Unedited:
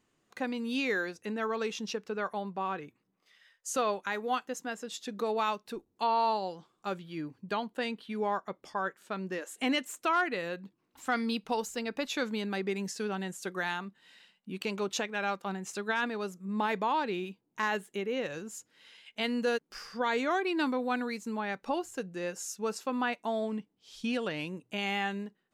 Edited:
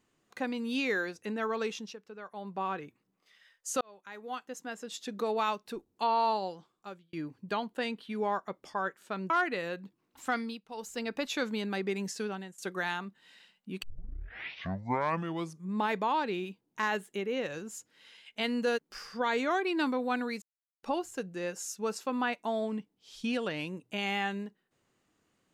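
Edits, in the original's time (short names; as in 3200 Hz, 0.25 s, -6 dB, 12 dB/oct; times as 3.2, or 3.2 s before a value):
1.68–2.58 dip -11.5 dB, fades 0.27 s
3.81–5.05 fade in
6.44–7.13 fade out
9.3–10.1 cut
11.08–11.83 dip -15.5 dB, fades 0.33 s
13–13.38 fade out, to -18 dB
14.63 tape start 1.92 s
21.22–21.63 mute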